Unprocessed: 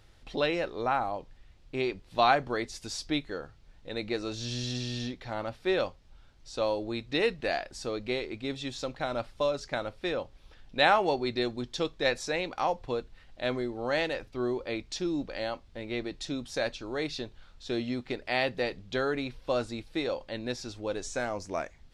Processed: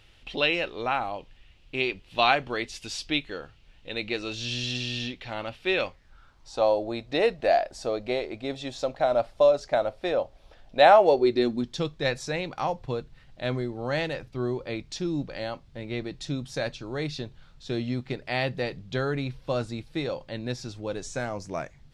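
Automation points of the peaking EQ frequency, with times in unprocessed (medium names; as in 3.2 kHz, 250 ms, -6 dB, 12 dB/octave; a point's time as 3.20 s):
peaking EQ +12.5 dB 0.71 oct
5.71 s 2.8 kHz
6.72 s 650 Hz
10.98 s 650 Hz
11.83 s 140 Hz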